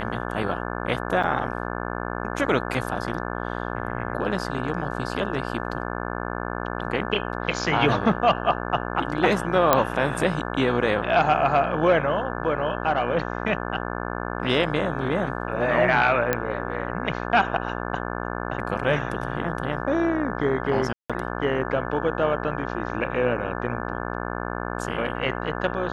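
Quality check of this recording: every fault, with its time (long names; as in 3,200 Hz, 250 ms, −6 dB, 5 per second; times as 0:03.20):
mains buzz 60 Hz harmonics 29 −30 dBFS
0:01.23–0:01.24: drop-out 5.5 ms
0:09.73: click −2 dBFS
0:16.33: click −7 dBFS
0:20.93–0:21.10: drop-out 166 ms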